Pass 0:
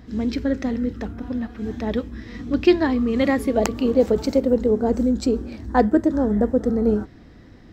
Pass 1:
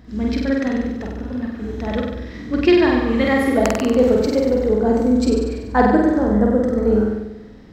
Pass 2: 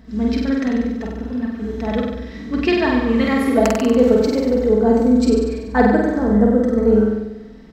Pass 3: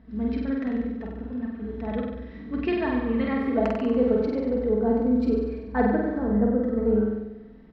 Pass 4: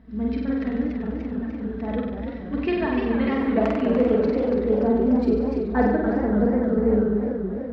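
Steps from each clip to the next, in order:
flutter between parallel walls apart 8.2 metres, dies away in 1.1 s; dynamic equaliser 1,600 Hz, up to +5 dB, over −34 dBFS, Q 0.79; level −1 dB
comb filter 4.5 ms, depth 55%; level −1 dB
high-frequency loss of the air 320 metres; level −7.5 dB
feedback echo with a swinging delay time 291 ms, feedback 64%, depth 184 cents, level −7 dB; level +1.5 dB

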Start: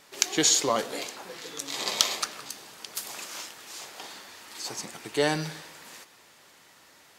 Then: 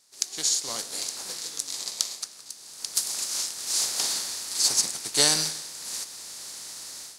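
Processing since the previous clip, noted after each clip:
compressing power law on the bin magnitudes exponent 0.6
flat-topped bell 6,600 Hz +13.5 dB
automatic gain control gain up to 12 dB
level −5 dB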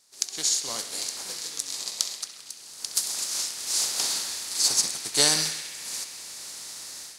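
feedback echo with a band-pass in the loop 66 ms, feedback 85%, band-pass 2,400 Hz, level −9.5 dB

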